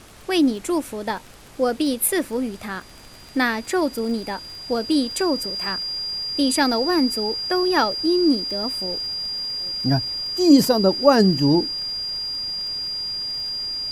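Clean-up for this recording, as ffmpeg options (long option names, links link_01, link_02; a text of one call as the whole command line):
ffmpeg -i in.wav -af "adeclick=threshold=4,bandreject=frequency=4800:width=30,afftdn=noise_reduction=25:noise_floor=-41" out.wav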